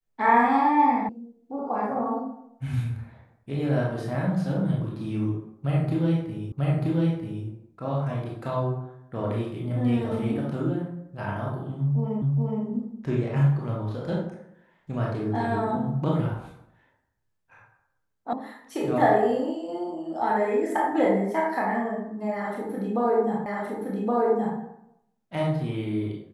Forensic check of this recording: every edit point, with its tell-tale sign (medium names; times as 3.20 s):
1.09 s: sound stops dead
6.52 s: repeat of the last 0.94 s
12.22 s: repeat of the last 0.42 s
18.33 s: sound stops dead
23.46 s: repeat of the last 1.12 s